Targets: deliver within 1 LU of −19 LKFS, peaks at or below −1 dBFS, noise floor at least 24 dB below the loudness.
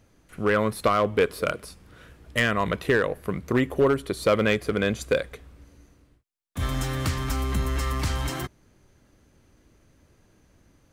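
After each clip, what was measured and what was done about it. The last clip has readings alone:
share of clipped samples 0.3%; peaks flattened at −13.5 dBFS; integrated loudness −25.5 LKFS; sample peak −13.5 dBFS; target loudness −19.0 LKFS
→ clipped peaks rebuilt −13.5 dBFS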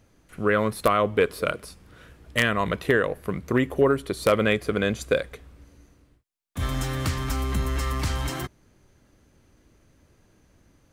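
share of clipped samples 0.0%; integrated loudness −25.0 LKFS; sample peak −4.5 dBFS; target loudness −19.0 LKFS
→ level +6 dB
brickwall limiter −1 dBFS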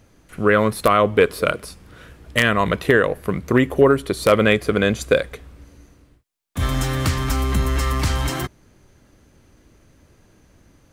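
integrated loudness −19.0 LKFS; sample peak −1.0 dBFS; background noise floor −56 dBFS

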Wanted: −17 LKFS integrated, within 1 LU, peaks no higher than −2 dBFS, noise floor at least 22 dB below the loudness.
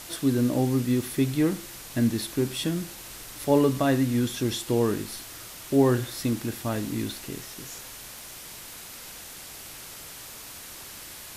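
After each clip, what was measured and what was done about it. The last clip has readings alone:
background noise floor −43 dBFS; target noise floor −49 dBFS; integrated loudness −26.5 LKFS; sample peak −9.0 dBFS; target loudness −17.0 LKFS
→ broadband denoise 6 dB, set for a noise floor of −43 dBFS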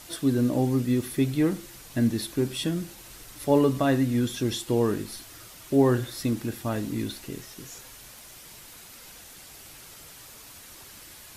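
background noise floor −47 dBFS; target noise floor −48 dBFS
→ broadband denoise 6 dB, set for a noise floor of −47 dBFS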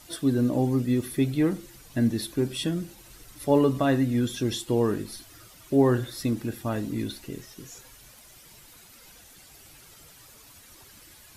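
background noise floor −52 dBFS; integrated loudness −26.0 LKFS; sample peak −9.5 dBFS; target loudness −17.0 LKFS
→ level +9 dB
brickwall limiter −2 dBFS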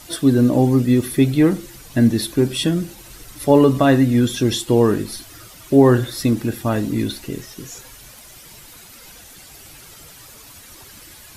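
integrated loudness −17.5 LKFS; sample peak −2.0 dBFS; background noise floor −43 dBFS

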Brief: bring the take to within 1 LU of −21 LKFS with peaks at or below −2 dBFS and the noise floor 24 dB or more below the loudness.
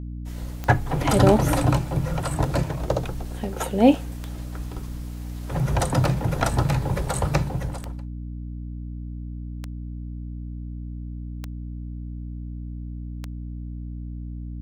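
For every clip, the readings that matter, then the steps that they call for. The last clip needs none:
number of clicks 8; mains hum 60 Hz; hum harmonics up to 300 Hz; level of the hum −31 dBFS; integrated loudness −26.5 LKFS; sample peak −2.5 dBFS; target loudness −21.0 LKFS
→ click removal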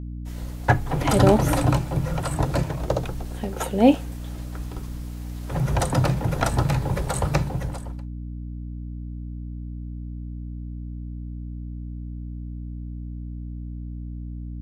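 number of clicks 0; mains hum 60 Hz; hum harmonics up to 300 Hz; level of the hum −31 dBFS
→ mains-hum notches 60/120/180/240/300 Hz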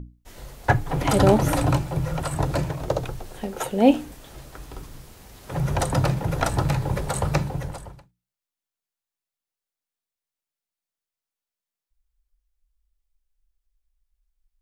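mains hum none found; integrated loudness −23.5 LKFS; sample peak −3.5 dBFS; target loudness −21.0 LKFS
→ level +2.5 dB
brickwall limiter −2 dBFS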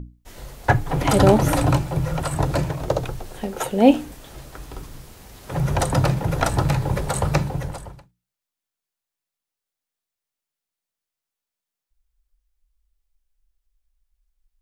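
integrated loudness −21.5 LKFS; sample peak −2.0 dBFS; background noise floor −87 dBFS

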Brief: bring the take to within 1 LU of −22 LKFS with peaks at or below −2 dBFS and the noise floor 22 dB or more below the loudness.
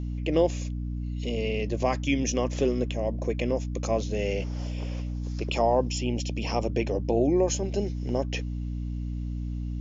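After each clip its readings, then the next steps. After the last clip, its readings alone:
mains hum 60 Hz; hum harmonics up to 300 Hz; level of the hum −29 dBFS; integrated loudness −28.5 LKFS; sample peak −10.5 dBFS; target loudness −22.0 LKFS
→ mains-hum notches 60/120/180/240/300 Hz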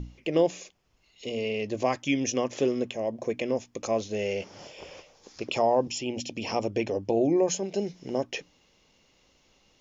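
mains hum none found; integrated loudness −28.5 LKFS; sample peak −11.5 dBFS; target loudness −22.0 LKFS
→ level +6.5 dB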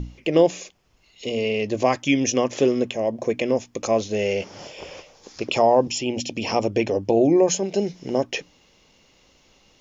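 integrated loudness −22.0 LKFS; sample peak −5.0 dBFS; background noise floor −59 dBFS

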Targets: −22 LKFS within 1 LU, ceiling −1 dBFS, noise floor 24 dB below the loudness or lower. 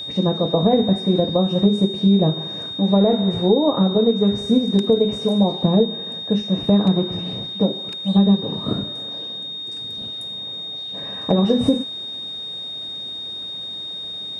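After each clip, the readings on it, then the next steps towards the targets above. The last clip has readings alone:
interfering tone 3,700 Hz; level of the tone −28 dBFS; integrated loudness −20.0 LKFS; sample peak −4.0 dBFS; target loudness −22.0 LKFS
→ notch filter 3,700 Hz, Q 30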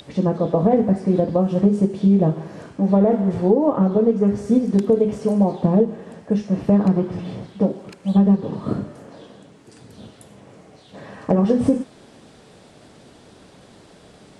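interfering tone none found; integrated loudness −19.0 LKFS; sample peak −4.5 dBFS; target loudness −22.0 LKFS
→ level −3 dB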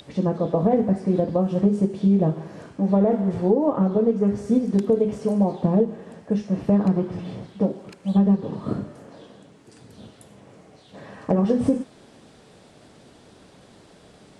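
integrated loudness −22.0 LKFS; sample peak −7.5 dBFS; background noise floor −52 dBFS

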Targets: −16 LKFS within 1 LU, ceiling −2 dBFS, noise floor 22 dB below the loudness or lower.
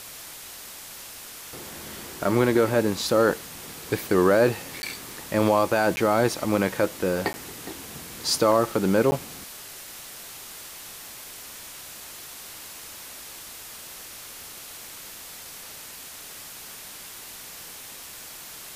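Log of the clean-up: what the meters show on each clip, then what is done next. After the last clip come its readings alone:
number of dropouts 4; longest dropout 10 ms; background noise floor −42 dBFS; target noise floor −46 dBFS; integrated loudness −24.0 LKFS; sample peak −8.0 dBFS; target loudness −16.0 LKFS
→ repair the gap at 0:04.82/0:05.96/0:07.33/0:09.11, 10 ms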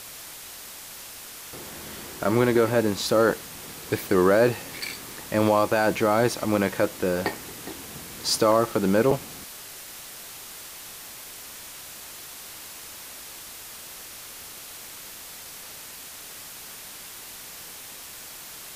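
number of dropouts 0; background noise floor −42 dBFS; target noise floor −46 dBFS
→ broadband denoise 6 dB, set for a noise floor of −42 dBFS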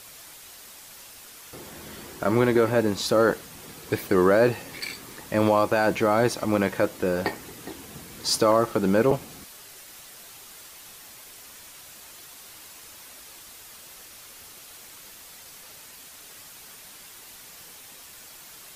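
background noise floor −46 dBFS; integrated loudness −23.5 LKFS; sample peak −8.0 dBFS; target loudness −16.0 LKFS
→ level +7.5 dB
brickwall limiter −2 dBFS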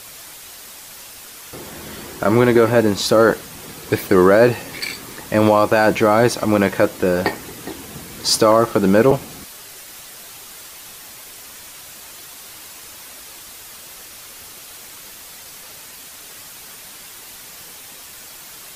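integrated loudness −16.0 LKFS; sample peak −2.0 dBFS; background noise floor −39 dBFS

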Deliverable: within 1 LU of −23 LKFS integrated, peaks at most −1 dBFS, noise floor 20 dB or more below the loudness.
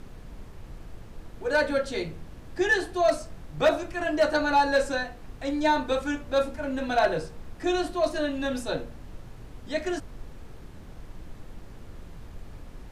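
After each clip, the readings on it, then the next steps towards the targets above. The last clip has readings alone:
share of clipped samples 0.2%; peaks flattened at −14.5 dBFS; background noise floor −45 dBFS; target noise floor −47 dBFS; integrated loudness −27.0 LKFS; sample peak −14.5 dBFS; target loudness −23.0 LKFS
→ clipped peaks rebuilt −14.5 dBFS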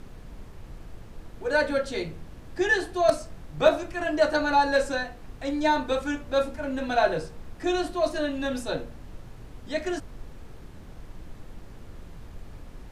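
share of clipped samples 0.0%; background noise floor −45 dBFS; target noise floor −47 dBFS
→ noise reduction from a noise print 6 dB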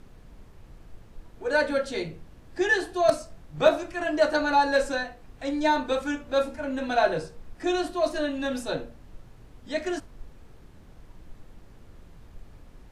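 background noise floor −51 dBFS; integrated loudness −26.5 LKFS; sample peak −5.5 dBFS; target loudness −23.0 LKFS
→ level +3.5 dB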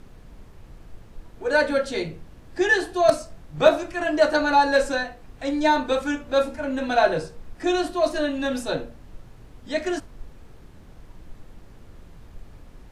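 integrated loudness −23.0 LKFS; sample peak −2.0 dBFS; background noise floor −47 dBFS

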